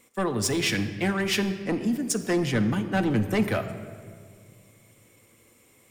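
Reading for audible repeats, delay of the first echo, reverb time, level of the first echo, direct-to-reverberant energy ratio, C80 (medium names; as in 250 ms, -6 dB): no echo, no echo, 1.9 s, no echo, 6.0 dB, 12.0 dB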